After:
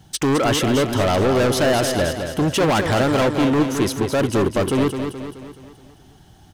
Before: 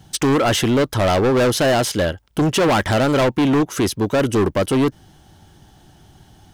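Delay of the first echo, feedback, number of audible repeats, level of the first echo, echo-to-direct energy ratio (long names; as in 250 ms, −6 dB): 213 ms, 50%, 5, −7.0 dB, −5.5 dB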